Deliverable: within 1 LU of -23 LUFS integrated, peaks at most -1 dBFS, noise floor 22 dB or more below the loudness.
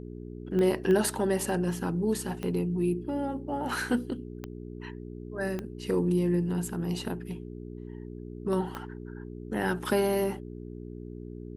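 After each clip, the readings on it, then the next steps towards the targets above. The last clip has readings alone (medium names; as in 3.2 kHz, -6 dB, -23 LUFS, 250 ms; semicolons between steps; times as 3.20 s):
clicks found 6; hum 60 Hz; highest harmonic 420 Hz; hum level -39 dBFS; loudness -30.0 LUFS; peak level -11.5 dBFS; loudness target -23.0 LUFS
-> de-click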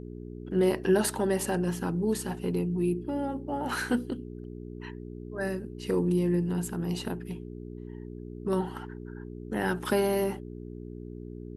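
clicks found 0; hum 60 Hz; highest harmonic 420 Hz; hum level -39 dBFS
-> de-hum 60 Hz, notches 7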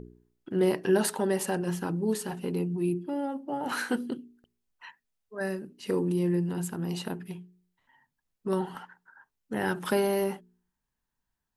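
hum not found; loudness -30.0 LUFS; peak level -14.0 dBFS; loudness target -23.0 LUFS
-> trim +7 dB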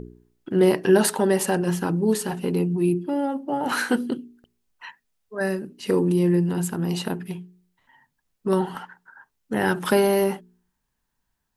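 loudness -23.0 LUFS; peak level -7.0 dBFS; noise floor -77 dBFS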